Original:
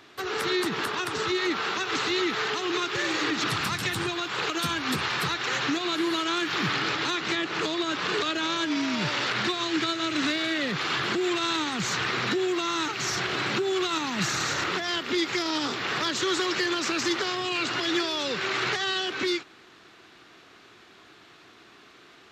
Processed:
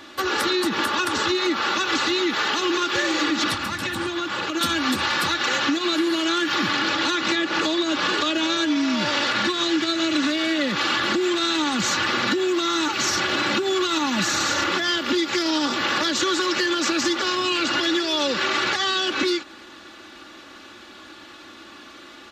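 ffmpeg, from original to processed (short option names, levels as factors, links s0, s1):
-filter_complex "[0:a]asettb=1/sr,asplit=3[s0][s1][s2];[s0]atrim=end=3.544[s3];[s1]atrim=start=3.54:end=4.61,asetpts=PTS-STARTPTS,afade=t=in:d=0.004:c=qsin,afade=t=out:st=1.066:d=0.004:c=qsin,acrossover=split=270|2800[s4][s5][s6];[s4]acompressor=threshold=0.00891:ratio=4[s7];[s5]acompressor=threshold=0.0158:ratio=4[s8];[s6]acompressor=threshold=0.00501:ratio=4[s9];[s7][s8][s9]amix=inputs=3:normalize=0[s10];[s2]atrim=start=4.606[s11];[s3][s10]acrossfade=d=0.004:c1=hsin:c2=qsin[s12];[s12][s11]acrossfade=d=0.004:c1=qsin:c2=hsin,equalizer=f=2200:t=o:w=0.38:g=-3.5,aecho=1:1:3.5:0.72,acompressor=threshold=0.0447:ratio=6,volume=2.51"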